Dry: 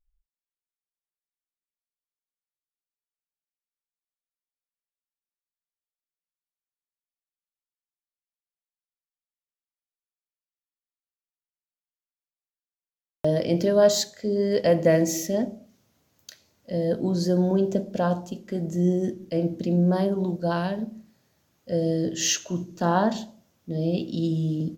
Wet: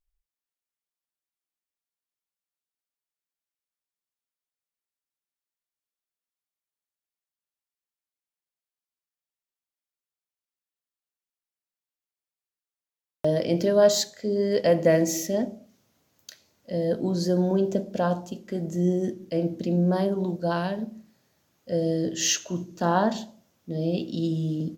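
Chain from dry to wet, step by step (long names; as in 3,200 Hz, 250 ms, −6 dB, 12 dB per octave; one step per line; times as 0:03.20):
low-shelf EQ 110 Hz −6.5 dB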